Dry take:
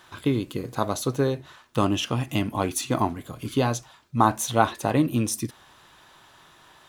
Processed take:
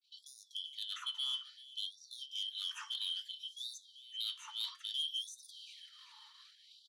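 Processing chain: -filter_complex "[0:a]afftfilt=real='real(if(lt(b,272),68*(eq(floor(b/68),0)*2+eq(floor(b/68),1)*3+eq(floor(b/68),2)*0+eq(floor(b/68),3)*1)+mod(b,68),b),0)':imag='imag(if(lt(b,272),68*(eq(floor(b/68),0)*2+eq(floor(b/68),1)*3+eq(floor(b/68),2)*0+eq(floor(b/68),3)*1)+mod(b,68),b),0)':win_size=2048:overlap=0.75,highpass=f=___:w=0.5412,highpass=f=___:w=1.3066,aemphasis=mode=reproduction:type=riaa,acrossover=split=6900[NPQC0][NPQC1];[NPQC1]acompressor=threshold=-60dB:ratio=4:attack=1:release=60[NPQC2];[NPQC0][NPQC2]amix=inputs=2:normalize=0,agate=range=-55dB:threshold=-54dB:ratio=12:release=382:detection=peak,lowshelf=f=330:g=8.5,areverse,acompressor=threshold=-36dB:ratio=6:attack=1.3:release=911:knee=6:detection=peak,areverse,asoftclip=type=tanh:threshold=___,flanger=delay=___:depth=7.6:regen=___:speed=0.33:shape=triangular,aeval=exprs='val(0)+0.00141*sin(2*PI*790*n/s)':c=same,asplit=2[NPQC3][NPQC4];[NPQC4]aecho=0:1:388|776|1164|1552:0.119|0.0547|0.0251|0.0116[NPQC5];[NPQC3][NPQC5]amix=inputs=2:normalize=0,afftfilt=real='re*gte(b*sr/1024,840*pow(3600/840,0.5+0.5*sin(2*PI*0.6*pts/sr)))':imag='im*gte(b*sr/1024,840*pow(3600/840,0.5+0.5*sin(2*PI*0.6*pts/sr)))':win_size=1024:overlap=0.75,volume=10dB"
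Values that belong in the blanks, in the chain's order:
160, 160, -36dB, 3.8, 75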